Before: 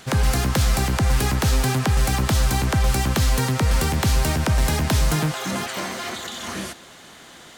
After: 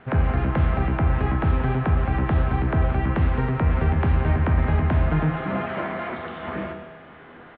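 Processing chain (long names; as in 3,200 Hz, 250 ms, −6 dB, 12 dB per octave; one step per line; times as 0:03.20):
Bessel low-pass filter 1,500 Hz, order 8
hum removal 47.02 Hz, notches 27
in parallel at +3 dB: speech leveller within 4 dB
on the sum: tuned comb filter 81 Hz, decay 1.2 s, harmonics all, mix 80%
single-tap delay 177 ms −13 dB
level +4 dB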